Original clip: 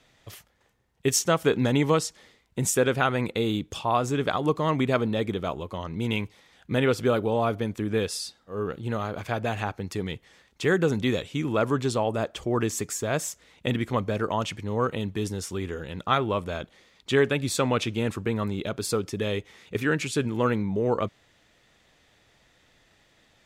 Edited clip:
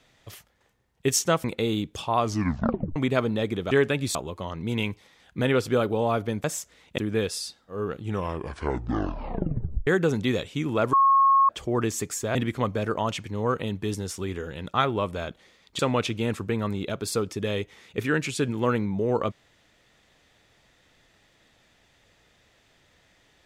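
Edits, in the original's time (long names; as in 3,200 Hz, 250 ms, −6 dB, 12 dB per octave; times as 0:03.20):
0:01.44–0:03.21: remove
0:03.96: tape stop 0.77 s
0:08.72: tape stop 1.94 s
0:11.72–0:12.28: beep over 1,090 Hz −15 dBFS
0:13.14–0:13.68: move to 0:07.77
0:17.12–0:17.56: move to 0:05.48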